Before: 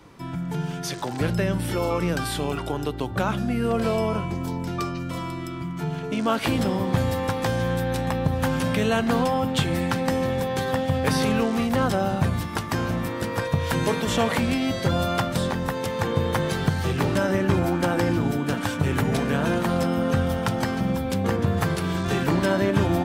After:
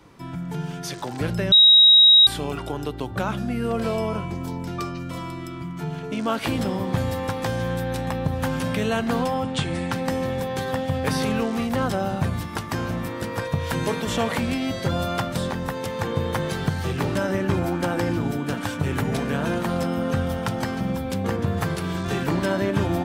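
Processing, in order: 1.52–2.27 s: bleep 3.81 kHz -7.5 dBFS; 9.43–9.92 s: Chebyshev low-pass 9.9 kHz, order 6; trim -1.5 dB

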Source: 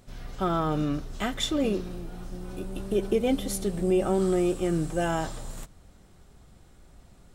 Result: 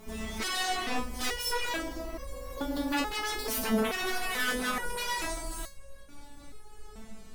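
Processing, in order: pitch bend over the whole clip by +9 st ending unshifted; sine folder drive 19 dB, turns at -13.5 dBFS; resonator arpeggio 2.3 Hz 220–550 Hz

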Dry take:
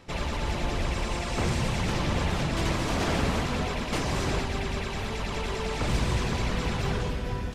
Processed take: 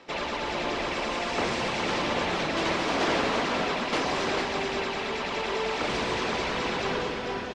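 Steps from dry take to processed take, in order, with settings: three-band isolator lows -21 dB, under 240 Hz, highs -22 dB, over 6.3 kHz; on a send: delay 444 ms -7 dB; on the sum: trim +3.5 dB

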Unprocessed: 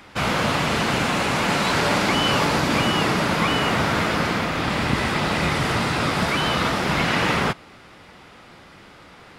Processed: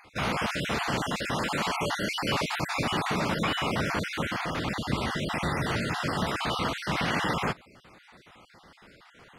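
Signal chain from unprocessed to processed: random holes in the spectrogram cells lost 38%; trim -6 dB

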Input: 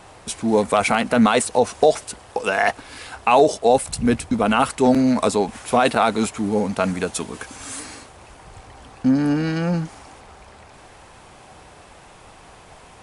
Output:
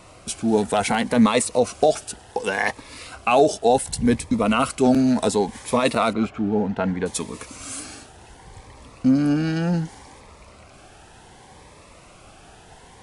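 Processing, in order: 6.13–7.06 s: low-pass 2.3 kHz 12 dB/octave; Shepard-style phaser rising 0.67 Hz

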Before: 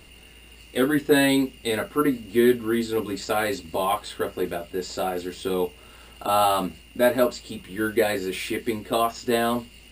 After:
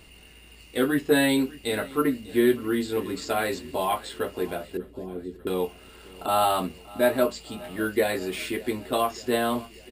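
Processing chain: 4.77–5.47 s: inverse Chebyshev low-pass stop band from 1.1 kHz, stop band 50 dB; on a send: feedback delay 594 ms, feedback 58%, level -21 dB; on the sum: trim -2 dB

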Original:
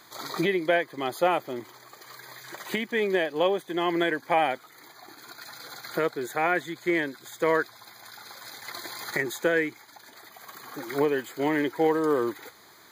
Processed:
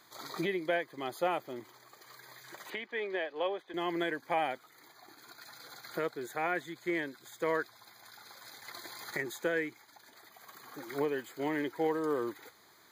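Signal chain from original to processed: 2.70–3.74 s: three-band isolator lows -16 dB, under 350 Hz, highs -19 dB, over 4.5 kHz; trim -8 dB

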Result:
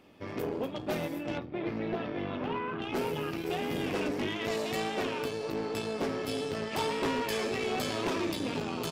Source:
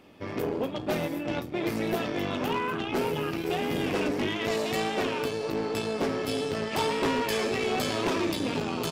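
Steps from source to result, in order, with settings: 1.38–2.82 s: distance through air 290 m; trim -4 dB

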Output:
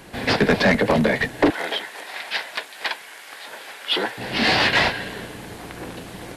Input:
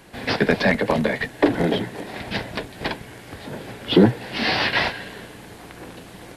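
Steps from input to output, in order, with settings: 1.50–4.18 s: high-pass 1 kHz 12 dB/octave; saturation -14 dBFS, distortion -13 dB; trim +4.5 dB

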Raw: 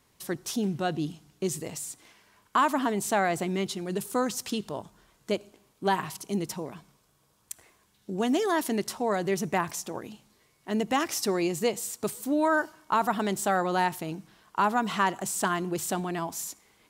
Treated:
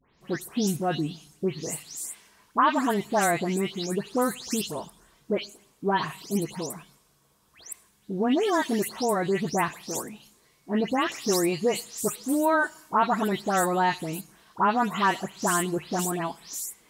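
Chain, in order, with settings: delay that grows with frequency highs late, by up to 207 ms; trim +2.5 dB

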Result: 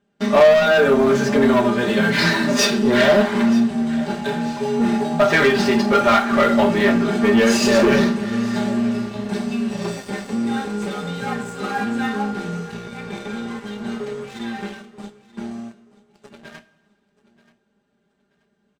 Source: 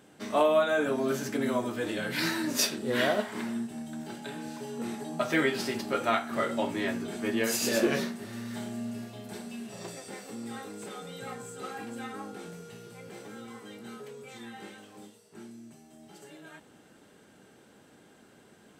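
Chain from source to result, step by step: low-pass 5.4 kHz 12 dB/octave; gate -49 dBFS, range -9 dB; bass shelf 150 Hz +11 dB; comb 5 ms, depth 69%; dynamic bell 1 kHz, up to +4 dB, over -39 dBFS, Q 0.71; waveshaping leveller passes 3; 12.75–13.42 s: small resonant body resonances 2.3/3.6 kHz, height 14 dB; feedback delay 931 ms, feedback 29%, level -19.5 dB; two-slope reverb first 0.23 s, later 1.8 s, from -18 dB, DRR 8 dB; trim -1.5 dB

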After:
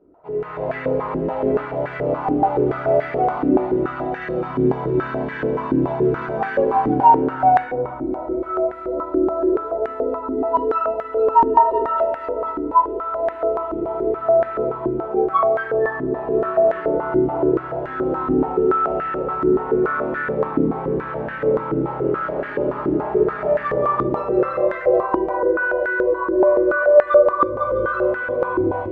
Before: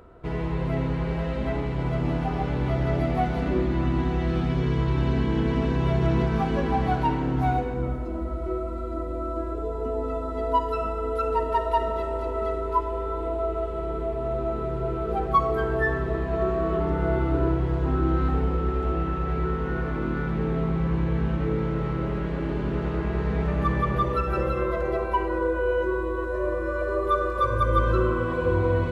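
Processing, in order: level rider gain up to 12.5 dB; reverberation RT60 0.35 s, pre-delay 3 ms, DRR -5 dB; step-sequenced band-pass 7 Hz 320–1700 Hz

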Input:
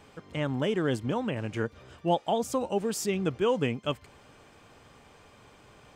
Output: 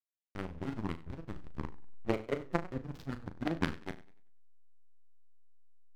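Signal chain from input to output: rotating-head pitch shifter -7.5 st; peaking EQ 1.4 kHz +8.5 dB 0.37 oct; in parallel at -1.5 dB: compression, threshold -40 dBFS, peak gain reduction 16.5 dB; on the sum: Chebyshev shaper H 3 -8 dB, 5 -18 dB, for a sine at -14.5 dBFS; hysteresis with a dead band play -28.5 dBFS; on a send: flutter echo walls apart 6.3 m, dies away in 0.21 s; on the sum: modulated delay 96 ms, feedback 33%, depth 139 cents, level -18 dB; trim +1 dB

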